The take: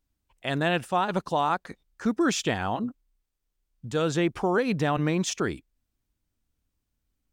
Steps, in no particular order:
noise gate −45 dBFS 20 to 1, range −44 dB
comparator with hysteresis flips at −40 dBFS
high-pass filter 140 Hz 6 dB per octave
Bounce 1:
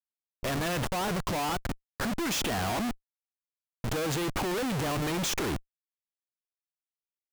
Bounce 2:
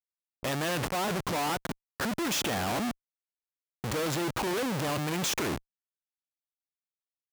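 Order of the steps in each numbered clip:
high-pass filter, then comparator with hysteresis, then noise gate
comparator with hysteresis, then noise gate, then high-pass filter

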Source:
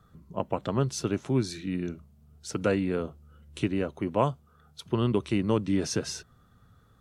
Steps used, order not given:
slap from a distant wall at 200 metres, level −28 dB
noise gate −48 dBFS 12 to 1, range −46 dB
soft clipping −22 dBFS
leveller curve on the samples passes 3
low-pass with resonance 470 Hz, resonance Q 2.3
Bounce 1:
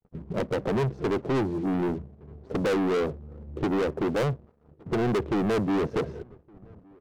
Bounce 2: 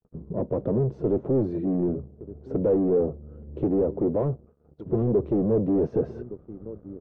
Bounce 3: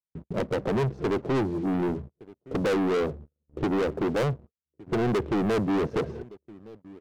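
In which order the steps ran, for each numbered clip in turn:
low-pass with resonance, then soft clipping, then leveller curve on the samples, then noise gate, then slap from a distant wall
slap from a distant wall, then soft clipping, then leveller curve on the samples, then low-pass with resonance, then noise gate
low-pass with resonance, then soft clipping, then noise gate, then slap from a distant wall, then leveller curve on the samples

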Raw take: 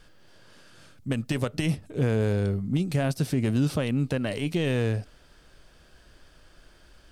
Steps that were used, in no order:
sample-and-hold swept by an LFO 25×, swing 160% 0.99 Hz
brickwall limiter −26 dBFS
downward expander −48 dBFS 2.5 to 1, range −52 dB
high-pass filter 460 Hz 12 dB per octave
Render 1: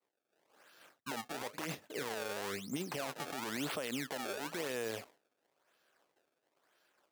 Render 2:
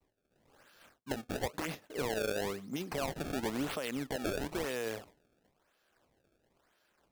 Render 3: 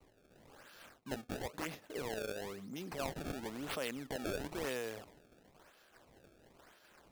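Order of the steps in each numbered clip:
sample-and-hold swept by an LFO, then high-pass filter, then brickwall limiter, then downward expander
high-pass filter, then sample-and-hold swept by an LFO, then brickwall limiter, then downward expander
brickwall limiter, then downward expander, then high-pass filter, then sample-and-hold swept by an LFO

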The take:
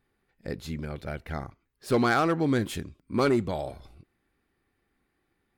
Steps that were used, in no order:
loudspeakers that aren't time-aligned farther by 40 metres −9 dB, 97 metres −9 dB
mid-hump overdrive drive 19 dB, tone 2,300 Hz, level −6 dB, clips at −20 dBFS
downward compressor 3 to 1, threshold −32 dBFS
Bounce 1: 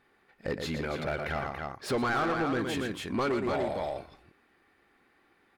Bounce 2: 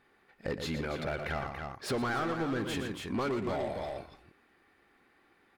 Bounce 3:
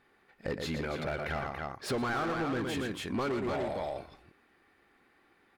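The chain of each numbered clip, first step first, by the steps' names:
loudspeakers that aren't time-aligned, then downward compressor, then mid-hump overdrive
mid-hump overdrive, then loudspeakers that aren't time-aligned, then downward compressor
loudspeakers that aren't time-aligned, then mid-hump overdrive, then downward compressor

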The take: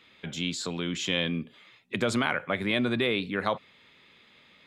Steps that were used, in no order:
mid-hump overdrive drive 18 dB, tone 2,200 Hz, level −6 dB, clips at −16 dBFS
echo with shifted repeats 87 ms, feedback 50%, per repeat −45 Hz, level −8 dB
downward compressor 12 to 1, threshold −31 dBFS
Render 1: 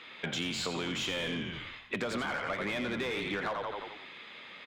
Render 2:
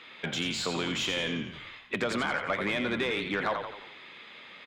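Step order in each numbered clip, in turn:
echo with shifted repeats, then mid-hump overdrive, then downward compressor
downward compressor, then echo with shifted repeats, then mid-hump overdrive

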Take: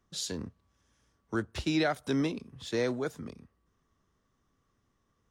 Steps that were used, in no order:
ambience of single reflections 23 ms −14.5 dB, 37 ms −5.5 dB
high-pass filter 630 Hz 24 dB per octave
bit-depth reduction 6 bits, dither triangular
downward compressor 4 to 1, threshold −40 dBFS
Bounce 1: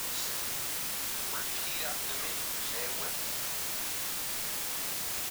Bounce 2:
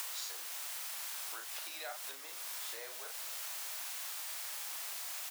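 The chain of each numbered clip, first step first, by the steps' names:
high-pass filter, then downward compressor, then bit-depth reduction, then ambience of single reflections
bit-depth reduction, then ambience of single reflections, then downward compressor, then high-pass filter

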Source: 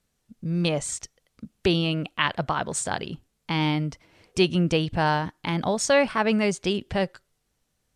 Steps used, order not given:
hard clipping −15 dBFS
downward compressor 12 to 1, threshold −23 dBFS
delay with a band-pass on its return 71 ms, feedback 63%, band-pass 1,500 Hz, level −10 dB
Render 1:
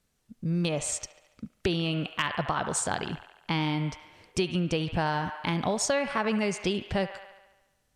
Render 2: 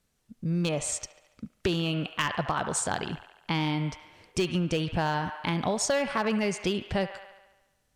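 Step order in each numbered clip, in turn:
delay with a band-pass on its return, then downward compressor, then hard clipping
hard clipping, then delay with a band-pass on its return, then downward compressor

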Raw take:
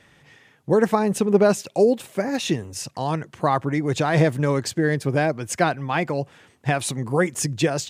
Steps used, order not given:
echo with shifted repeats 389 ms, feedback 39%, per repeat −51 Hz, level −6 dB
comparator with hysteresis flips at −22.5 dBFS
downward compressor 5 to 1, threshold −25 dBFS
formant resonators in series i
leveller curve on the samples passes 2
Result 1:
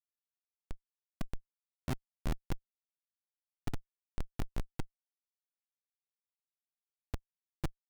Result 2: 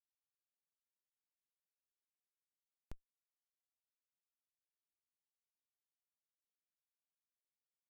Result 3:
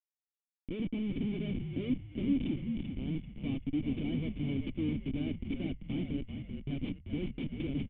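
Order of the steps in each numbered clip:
formant resonators in series, then echo with shifted repeats, then downward compressor, then comparator with hysteresis, then leveller curve on the samples
echo with shifted repeats, then leveller curve on the samples, then downward compressor, then formant resonators in series, then comparator with hysteresis
comparator with hysteresis, then leveller curve on the samples, then downward compressor, then formant resonators in series, then echo with shifted repeats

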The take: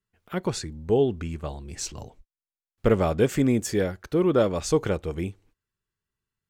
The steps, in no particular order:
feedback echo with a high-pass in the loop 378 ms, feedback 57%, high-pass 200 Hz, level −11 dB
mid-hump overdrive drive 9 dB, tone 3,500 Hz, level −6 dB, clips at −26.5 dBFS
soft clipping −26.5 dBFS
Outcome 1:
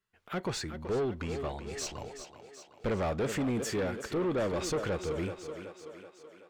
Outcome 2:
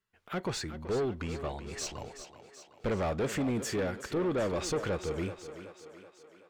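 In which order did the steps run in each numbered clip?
mid-hump overdrive, then feedback echo with a high-pass in the loop, then soft clipping
mid-hump overdrive, then soft clipping, then feedback echo with a high-pass in the loop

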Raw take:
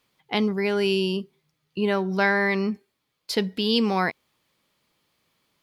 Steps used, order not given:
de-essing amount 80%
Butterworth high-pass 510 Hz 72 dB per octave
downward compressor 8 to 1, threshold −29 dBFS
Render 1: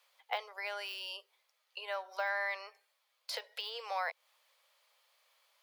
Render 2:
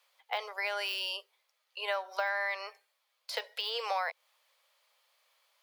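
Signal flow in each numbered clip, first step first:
de-essing, then downward compressor, then Butterworth high-pass
de-essing, then Butterworth high-pass, then downward compressor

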